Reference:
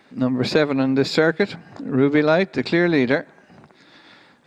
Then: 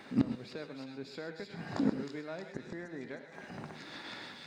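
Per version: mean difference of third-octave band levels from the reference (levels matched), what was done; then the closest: 10.5 dB: spectral delete 2.41–3.01, 2100–5500 Hz; flipped gate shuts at -19 dBFS, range -28 dB; thin delay 0.312 s, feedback 57%, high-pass 2400 Hz, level -3 dB; non-linear reverb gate 0.15 s rising, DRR 7 dB; gain +2 dB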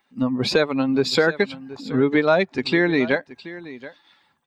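4.5 dB: per-bin expansion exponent 1.5; bell 150 Hz -5.5 dB 2.6 oct; in parallel at +2 dB: compressor, threshold -28 dBFS, peak gain reduction 13 dB; on the sum: echo 0.727 s -17 dB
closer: second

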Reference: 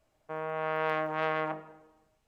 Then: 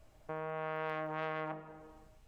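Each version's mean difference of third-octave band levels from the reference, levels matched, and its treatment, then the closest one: 3.5 dB: low shelf 110 Hz +12 dB; compressor 2:1, threshold -52 dBFS, peak gain reduction 15 dB; gain +6 dB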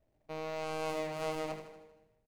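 8.5 dB: median filter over 41 samples; on a send: feedback echo 79 ms, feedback 54%, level -9 dB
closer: first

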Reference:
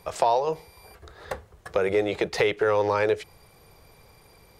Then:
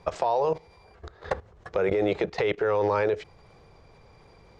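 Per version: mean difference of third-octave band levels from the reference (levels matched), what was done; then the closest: 3.5 dB: LPF 7000 Hz 24 dB/oct; level quantiser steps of 15 dB; high shelf 2400 Hz -8 dB; gain +7 dB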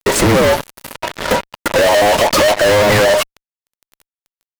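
11.5 dB: band inversion scrambler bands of 1000 Hz; bell 4200 Hz -5.5 dB 2.1 oct; fuzz box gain 46 dB, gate -44 dBFS; gain +3.5 dB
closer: first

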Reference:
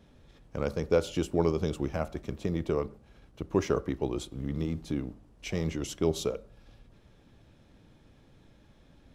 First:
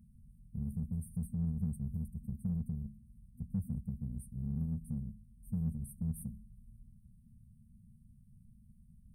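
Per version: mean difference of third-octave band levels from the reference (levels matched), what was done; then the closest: 12.5 dB: FFT band-reject 240–8300 Hz; in parallel at -8 dB: soft clip -39 dBFS, distortion -6 dB; on the sum: gain -3 dB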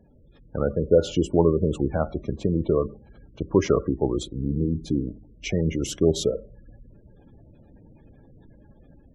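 6.5 dB: spectral gate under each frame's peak -20 dB strong; AGC gain up to 5.5 dB; gain +2 dB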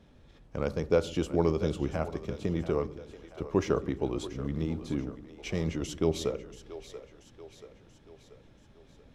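3.0 dB: high shelf 11000 Hz -11 dB; on a send: split-band echo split 370 Hz, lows 0.132 s, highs 0.683 s, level -13 dB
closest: third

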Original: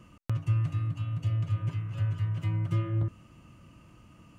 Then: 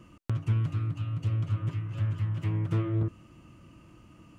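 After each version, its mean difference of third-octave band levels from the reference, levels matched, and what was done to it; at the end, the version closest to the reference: 1.5 dB: bell 330 Hz +6 dB 0.43 oct; Doppler distortion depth 0.39 ms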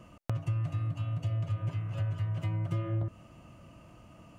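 2.5 dB: bell 660 Hz +10.5 dB 0.67 oct; compressor 3:1, threshold -29 dBFS, peak gain reduction 6 dB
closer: first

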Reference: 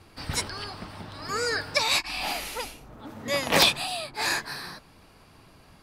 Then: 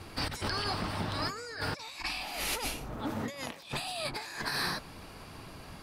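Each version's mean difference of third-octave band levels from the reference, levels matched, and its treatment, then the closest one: 10.5 dB: negative-ratio compressor -38 dBFS, ratio -1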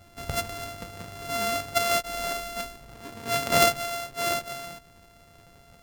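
5.5 dB: sample sorter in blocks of 64 samples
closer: second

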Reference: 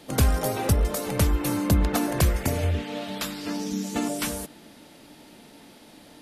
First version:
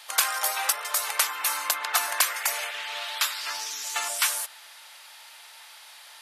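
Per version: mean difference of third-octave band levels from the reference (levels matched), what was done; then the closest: 14.5 dB: HPF 970 Hz 24 dB/oct; gain +7 dB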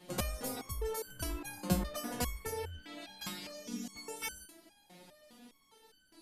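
7.0 dB: stepped resonator 4.9 Hz 180–1500 Hz; gain +5.5 dB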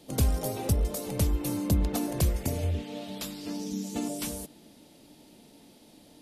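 2.0 dB: bell 1500 Hz -10 dB 1.5 oct; gain -4 dB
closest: third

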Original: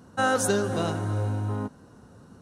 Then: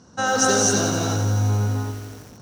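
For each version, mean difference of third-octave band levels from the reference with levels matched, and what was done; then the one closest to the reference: 7.5 dB: synth low-pass 5800 Hz, resonance Q 5.4; non-linear reverb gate 0.28 s rising, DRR -2 dB; lo-fi delay 87 ms, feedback 80%, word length 6-bit, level -11 dB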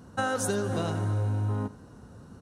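2.0 dB: low shelf 89 Hz +8.5 dB; compressor, threshold -25 dBFS, peak gain reduction 6.5 dB; echo 79 ms -18 dB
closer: second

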